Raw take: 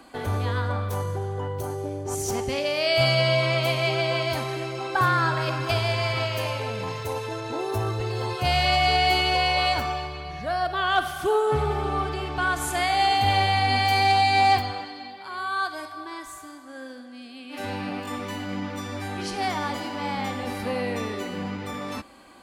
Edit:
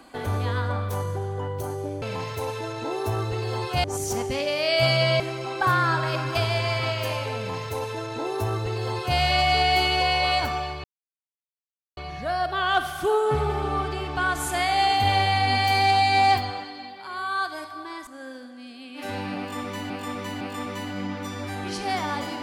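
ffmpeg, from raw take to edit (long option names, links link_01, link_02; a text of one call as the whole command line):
ffmpeg -i in.wav -filter_complex "[0:a]asplit=8[link_01][link_02][link_03][link_04][link_05][link_06][link_07][link_08];[link_01]atrim=end=2.022[link_09];[link_02]atrim=start=6.698:end=8.522[link_10];[link_03]atrim=start=2.018:end=3.382[link_11];[link_04]atrim=start=4.538:end=10.18,asetpts=PTS-STARTPTS,afade=type=out:start_time=5.638:duration=0.004:curve=hsin,apad=pad_dur=1.13[link_12];[link_05]atrim=start=10.18:end=16.282,asetpts=PTS-STARTPTS,afade=type=in:duration=0.004:curve=hsin[link_13];[link_06]atrim=start=16.618:end=18.452[link_14];[link_07]atrim=start=17.938:end=18.452[link_15];[link_08]atrim=start=17.938[link_16];[link_09][link_10]acrossfade=duration=0.004:curve1=hsin:curve2=hsin[link_17];[link_17][link_11]acrossfade=duration=0.004:curve1=hsin:curve2=hsin[link_18];[link_12][link_13]concat=n=2:v=0:a=1[link_19];[link_18][link_19]acrossfade=duration=0.004:curve1=hsin:curve2=hsin[link_20];[link_20][link_14]acrossfade=duration=0.004:curve1=hsin:curve2=hsin[link_21];[link_21][link_15]acrossfade=duration=0.004:curve1=hsin:curve2=hsin[link_22];[link_22][link_16]acrossfade=duration=0.004:curve1=hsin:curve2=hsin" out.wav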